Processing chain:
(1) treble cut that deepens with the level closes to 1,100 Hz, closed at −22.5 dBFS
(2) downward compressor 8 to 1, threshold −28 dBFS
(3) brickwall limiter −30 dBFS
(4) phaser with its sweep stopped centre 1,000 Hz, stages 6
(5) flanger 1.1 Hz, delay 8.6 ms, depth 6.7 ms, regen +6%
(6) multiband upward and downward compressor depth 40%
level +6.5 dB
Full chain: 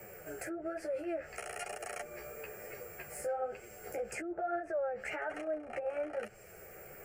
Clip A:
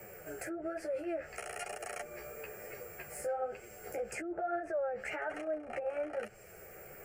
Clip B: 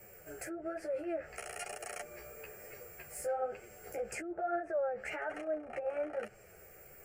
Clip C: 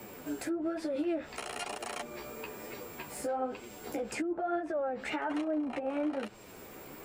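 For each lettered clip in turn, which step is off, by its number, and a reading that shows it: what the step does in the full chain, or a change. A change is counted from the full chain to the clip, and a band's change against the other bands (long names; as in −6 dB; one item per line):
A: 2, average gain reduction 1.5 dB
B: 6, change in momentary loudness spread +3 LU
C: 4, 250 Hz band +8.0 dB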